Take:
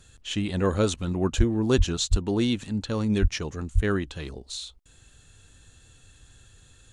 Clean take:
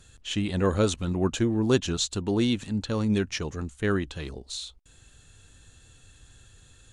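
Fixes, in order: de-plosive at 1.37/1.77/2.1/3.21/3.74

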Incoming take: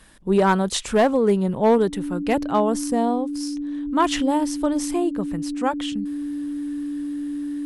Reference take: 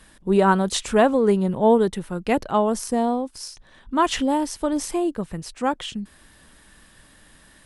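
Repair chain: clip repair -10.5 dBFS; notch 290 Hz, Q 30

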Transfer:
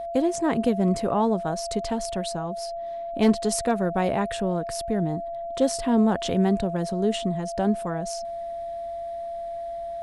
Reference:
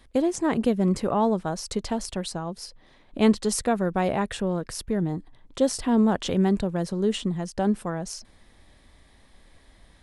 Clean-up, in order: clip repair -11 dBFS; notch 680 Hz, Q 30

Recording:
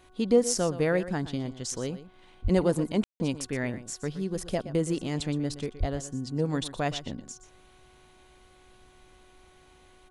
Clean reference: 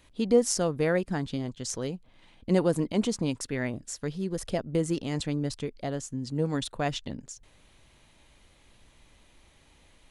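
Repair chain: de-hum 369.3 Hz, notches 4; de-plosive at 2.43/5.79; room tone fill 3.04–3.2; inverse comb 0.12 s -14 dB

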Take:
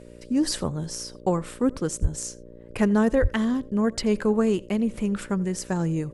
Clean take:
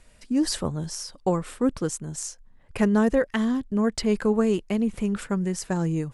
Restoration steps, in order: de-hum 59.1 Hz, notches 10; 2.01–2.13 HPF 140 Hz 24 dB/oct; 3.21–3.33 HPF 140 Hz 24 dB/oct; inverse comb 85 ms -24 dB

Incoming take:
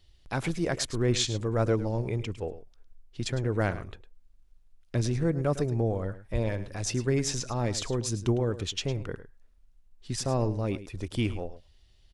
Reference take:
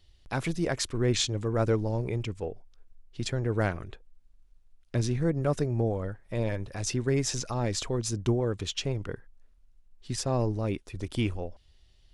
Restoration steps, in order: de-plosive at 6.32; inverse comb 0.106 s -14 dB

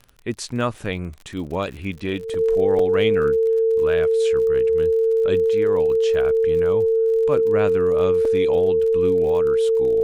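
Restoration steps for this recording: de-click; notch 450 Hz, Q 30; interpolate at 0.74/2.34/2.79/8.25, 3.5 ms

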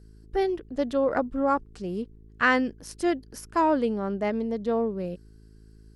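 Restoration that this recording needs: de-hum 53.9 Hz, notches 8

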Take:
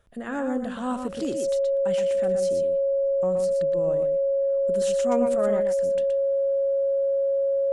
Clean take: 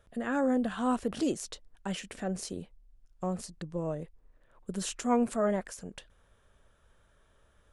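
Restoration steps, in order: notch 550 Hz, Q 30; inverse comb 0.121 s -6.5 dB

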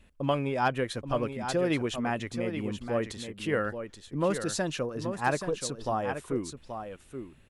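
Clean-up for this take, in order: clip repair -15 dBFS; inverse comb 0.829 s -8.5 dB

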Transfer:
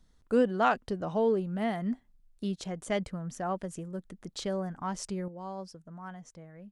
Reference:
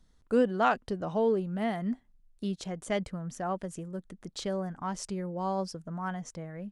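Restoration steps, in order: gain 0 dB, from 5.28 s +8.5 dB

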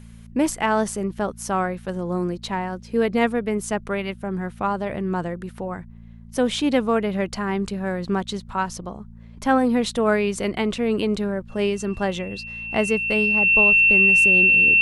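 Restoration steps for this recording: de-hum 56.8 Hz, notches 4; notch 2700 Hz, Q 30

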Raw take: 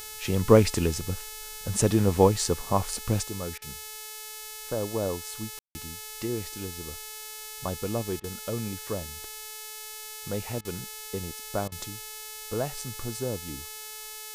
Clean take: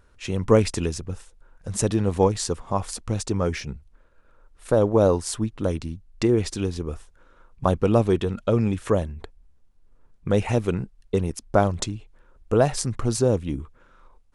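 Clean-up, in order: de-hum 431.8 Hz, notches 35; room tone fill 5.59–5.75; interpolate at 3.58/8.2/10.61/11.68, 38 ms; gain correction +11.5 dB, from 3.24

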